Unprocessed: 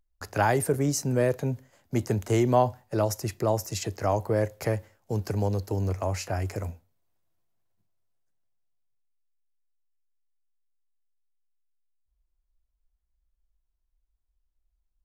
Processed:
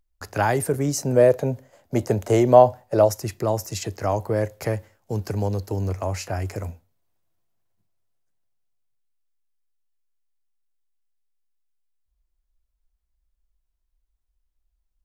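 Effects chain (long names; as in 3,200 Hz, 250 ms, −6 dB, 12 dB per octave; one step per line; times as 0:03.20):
0:00.97–0:03.09: parametric band 590 Hz +9.5 dB 1 octave
level +2 dB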